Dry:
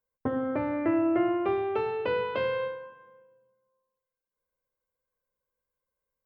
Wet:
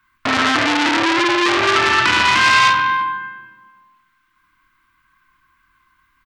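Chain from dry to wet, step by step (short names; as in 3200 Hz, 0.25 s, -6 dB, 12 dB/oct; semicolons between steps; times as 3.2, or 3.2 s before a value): elliptic band-stop 320–1100 Hz, stop band 40 dB; three-band isolator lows -13 dB, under 490 Hz, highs -22 dB, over 2900 Hz; compressor 6:1, threshold -40 dBFS, peak gain reduction 8 dB; doubler 26 ms -5 dB; echo with dull and thin repeats by turns 0.112 s, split 810 Hz, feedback 52%, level -3 dB; maximiser +35.5 dB; core saturation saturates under 2600 Hz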